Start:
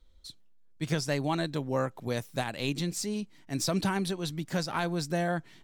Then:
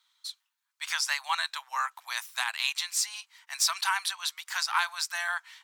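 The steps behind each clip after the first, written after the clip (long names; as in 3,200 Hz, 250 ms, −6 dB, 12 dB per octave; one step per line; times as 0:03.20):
Butterworth high-pass 930 Hz 48 dB per octave
level +7.5 dB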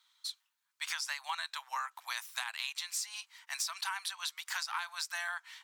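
downward compressor 6 to 1, threshold −34 dBFS, peak gain reduction 13 dB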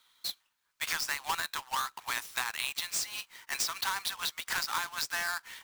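each half-wave held at its own peak
level +1 dB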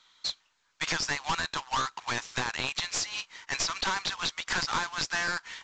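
wavefolder on the positive side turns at −30 dBFS
level +4.5 dB
mu-law 128 kbit/s 16,000 Hz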